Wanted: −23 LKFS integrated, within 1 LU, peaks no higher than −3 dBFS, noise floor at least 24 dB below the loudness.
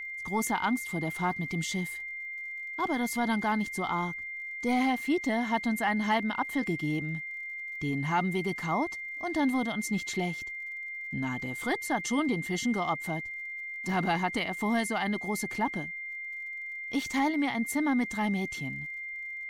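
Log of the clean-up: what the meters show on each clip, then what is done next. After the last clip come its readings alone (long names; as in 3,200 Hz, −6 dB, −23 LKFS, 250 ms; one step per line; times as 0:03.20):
crackle rate 52 per second; interfering tone 2,100 Hz; level of the tone −36 dBFS; integrated loudness −31.0 LKFS; sample peak −17.0 dBFS; target loudness −23.0 LKFS
→ click removal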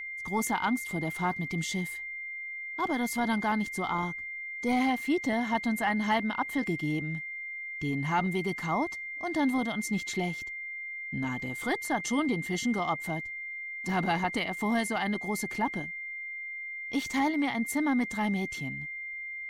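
crackle rate 0.31 per second; interfering tone 2,100 Hz; level of the tone −36 dBFS
→ notch filter 2,100 Hz, Q 30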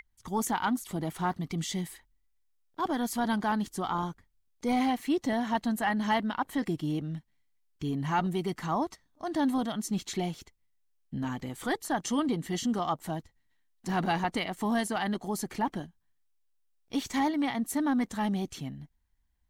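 interfering tone none found; integrated loudness −31.5 LKFS; sample peak −17.0 dBFS; target loudness −23.0 LKFS
→ level +8.5 dB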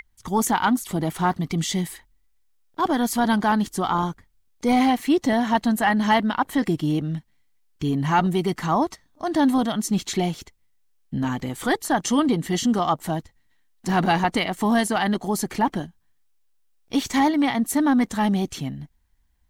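integrated loudness −23.0 LKFS; sample peak −8.5 dBFS; background noise floor −63 dBFS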